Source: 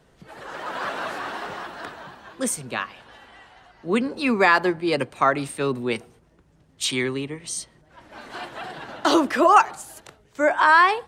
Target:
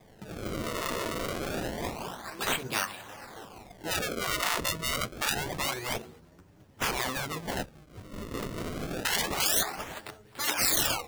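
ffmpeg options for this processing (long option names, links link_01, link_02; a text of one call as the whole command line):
ffmpeg -i in.wav -filter_complex "[0:a]flanger=delay=9:depth=9.3:regen=-1:speed=0.29:shape=sinusoidal,asplit=2[link_01][link_02];[link_02]acompressor=threshold=-29dB:ratio=6,volume=-0.5dB[link_03];[link_01][link_03]amix=inputs=2:normalize=0,asettb=1/sr,asplit=3[link_04][link_05][link_06];[link_04]atrim=end=0.674[link_07];[link_05]atrim=start=0.67:end=1.33,asetpts=PTS-STARTPTS,afade=type=in:duration=0.004:curve=qsin,afade=type=out:start_time=0.656:duration=0.004:curve=qsin,aecho=1:1:6.1:0.67,atrim=end_sample=29106[link_08];[link_06]atrim=start=1.326[link_09];[link_07][link_08]acrossfade=duration=0.004:curve1=hsin:curve2=qsin[link_10];[link_10][link_09]acrossfade=duration=0.004:curve1=qsin:curve2=hsin,acrusher=samples=31:mix=1:aa=0.000001:lfo=1:lforange=49.6:lforate=0.27,afftfilt=real='re*lt(hypot(re,im),0.178)':imag='im*lt(hypot(re,im),0.178)':win_size=1024:overlap=0.75" out.wav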